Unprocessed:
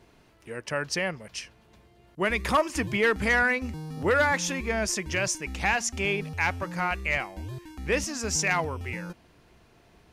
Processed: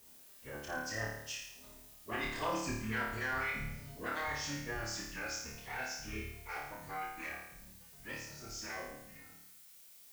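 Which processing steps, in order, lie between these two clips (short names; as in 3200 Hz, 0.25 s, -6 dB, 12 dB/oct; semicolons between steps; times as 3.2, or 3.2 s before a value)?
octaver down 1 oct, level -1 dB; Doppler pass-by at 2.33, 19 m/s, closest 3.3 m; notches 60/120/180/240/300/360 Hz; reverb removal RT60 1 s; low shelf 190 Hz -6 dB; notch 2300 Hz, Q 18; reverse; compressor 6:1, threshold -50 dBFS, peak gain reduction 26.5 dB; reverse; formant-preserving pitch shift -10 st; added noise blue -74 dBFS; on a send: flutter echo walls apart 4.7 m, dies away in 0.78 s; on the sum: gain +12 dB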